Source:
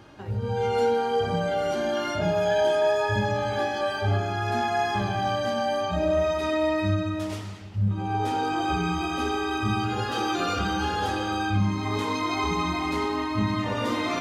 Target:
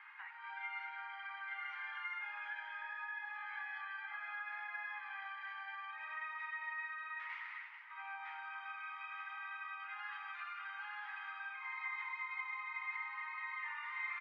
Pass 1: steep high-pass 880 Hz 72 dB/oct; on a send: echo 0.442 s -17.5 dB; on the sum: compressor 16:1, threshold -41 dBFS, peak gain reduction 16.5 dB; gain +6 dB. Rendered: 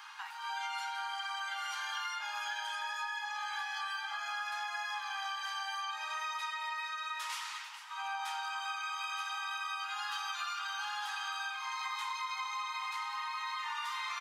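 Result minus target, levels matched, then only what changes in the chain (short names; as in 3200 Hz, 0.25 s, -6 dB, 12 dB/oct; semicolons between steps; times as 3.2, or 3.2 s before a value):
2000 Hz band -3.0 dB
add after compressor: ladder low-pass 2200 Hz, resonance 75%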